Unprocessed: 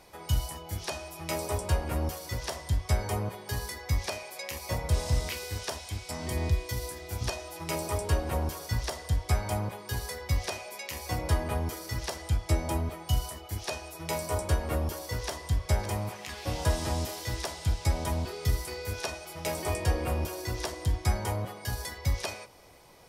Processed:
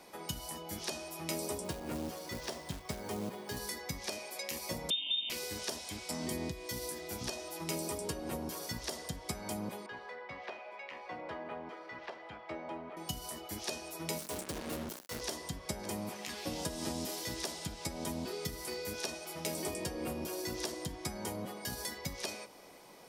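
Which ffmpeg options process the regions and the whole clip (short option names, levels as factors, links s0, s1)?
-filter_complex "[0:a]asettb=1/sr,asplit=3[s0][s1][s2];[s0]atrim=end=1.644[s3];[s1]atrim=start=1.64:end=3.57,asetpts=PTS-STARTPTS,afade=t=in:d=0.004:c=qsin,afade=t=out:st=1.926:d=0.004:c=qsin,lowpass=f=3900:p=1,acrusher=bits=4:mode=log:mix=0:aa=0.000001[s4];[s2]atrim=start=3.566[s5];[s3][s4]acrossfade=d=0.004:c1=hsin:c2=qsin[s6];[s6][s5]acrossfade=d=0.004:c1=qsin:c2=hsin,asettb=1/sr,asplit=3[s7][s8][s9];[s7]atrim=end=4.904[s10];[s8]atrim=start=4.9:end=5.3,asetpts=PTS-STARTPTS,afade=t=in:d=0.004:c=qsin,afade=t=out:st=0.396:d=0.004:c=qsin,equalizer=f=840:w=2:g=7.5,lowpass=f=3100:t=q:w=0.5098,lowpass=f=3100:t=q:w=0.6013,lowpass=f=3100:t=q:w=0.9,lowpass=f=3100:t=q:w=2.563,afreqshift=-3700,asuperstop=centerf=1500:order=20:qfactor=1.4[s11];[s9]atrim=start=5.296[s12];[s10][s11]acrossfade=d=0.004:c1=hsin:c2=qsin[s13];[s13][s12]acrossfade=d=0.004:c1=qsin:c2=hsin,asettb=1/sr,asplit=3[s14][s15][s16];[s14]atrim=end=9.864[s17];[s15]atrim=start=9.86:end=12.97,asetpts=PTS-STARTPTS,afade=t=in:d=0.004:c=qsin,afade=t=out:st=3.106:d=0.004:c=qsin,highpass=100,lowpass=3900,acrossover=split=510 2700:gain=0.178 1 0.0891[s18][s19][s20];[s18][s19][s20]amix=inputs=3:normalize=0[s21];[s16]atrim=start=12.966[s22];[s17][s21]acrossfade=d=0.004:c1=hsin:c2=qsin[s23];[s23][s22]acrossfade=d=0.004:c1=qsin:c2=hsin,asettb=1/sr,asplit=3[s24][s25][s26];[s24]atrim=end=14.184[s27];[s25]atrim=start=14.18:end=15.21,asetpts=PTS-STARTPTS,afade=t=in:d=0.004:c=qsin,afade=t=out:st=1.026:d=0.004:c=qsin,acrusher=bits=4:mix=0:aa=0.5,asoftclip=type=hard:threshold=0.0316[s28];[s26]atrim=start=15.206[s29];[s27][s28]acrossfade=d=0.004:c1=hsin:c2=qsin[s30];[s30][s29]acrossfade=d=0.004:c1=qsin:c2=hsin,acompressor=threshold=0.0355:ratio=6,lowshelf=f=140:t=q:w=1.5:g=-12.5,acrossover=split=440|3000[s31][s32][s33];[s32]acompressor=threshold=0.00501:ratio=3[s34];[s31][s34][s33]amix=inputs=3:normalize=0"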